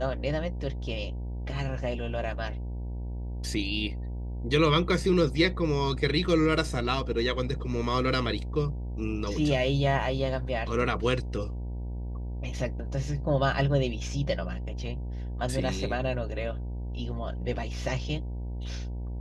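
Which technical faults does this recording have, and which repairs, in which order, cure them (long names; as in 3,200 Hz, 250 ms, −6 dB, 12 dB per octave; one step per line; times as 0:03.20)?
mains buzz 60 Hz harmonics 16 −34 dBFS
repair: hum removal 60 Hz, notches 16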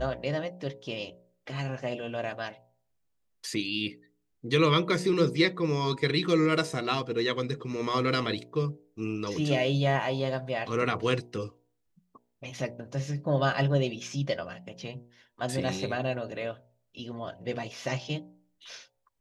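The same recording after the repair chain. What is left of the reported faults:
none of them is left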